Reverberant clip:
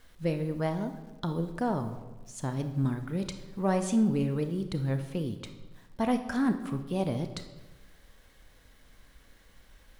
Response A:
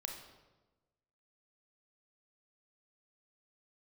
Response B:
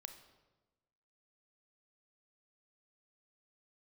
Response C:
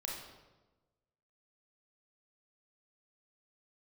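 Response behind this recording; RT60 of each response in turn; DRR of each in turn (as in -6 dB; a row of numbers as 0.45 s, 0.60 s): B; 1.2 s, 1.2 s, 1.2 s; 2.5 dB, 7.5 dB, -2.0 dB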